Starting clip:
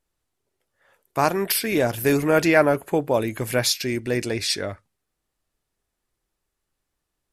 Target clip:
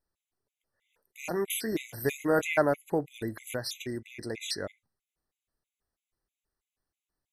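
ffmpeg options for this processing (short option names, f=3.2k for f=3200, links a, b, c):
-filter_complex "[0:a]asettb=1/sr,asplit=3[a][b][c];[a]atrim=end=1.184[d];[b]atrim=start=1.18:end=2.49,asetpts=PTS-STARTPTS,afade=t=in:d=0.004:c=qsin,afade=t=out:st=1.306:d=0.004:c=qsin,asplit=2[e][f];[f]adelay=23,volume=-10dB[g];[e][g]amix=inputs=2:normalize=0,atrim=end_sample=57771[h];[c]atrim=start=2.486[i];[d][h]acrossfade=d=0.004:c1=hsin:c2=qsin[j];[j][i]acrossfade=d=0.004:c1=qsin:c2=hsin,asettb=1/sr,asplit=3[k][l][m];[k]atrim=end=3.514[n];[l]atrim=start=3.51:end=4.5,asetpts=PTS-STARTPTS,afade=t=in:d=0.004:c=qsin,afade=t=out:st=0.986:d=0.004:c=qsin,acompressor=threshold=-23dB:ratio=6[o];[m]atrim=start=4.496[p];[n][o]acrossfade=d=0.004:c1=hsin:c2=qsin[q];[q][p]acrossfade=d=0.004:c1=qsin:c2=hsin,afftfilt=real='re*gt(sin(2*PI*3.1*pts/sr)*(1-2*mod(floor(b*sr/1024/2000),2)),0)':imag='im*gt(sin(2*PI*3.1*pts/sr)*(1-2*mod(floor(b*sr/1024/2000),2)),0)':win_size=1024:overlap=0.75,volume=-6.5dB"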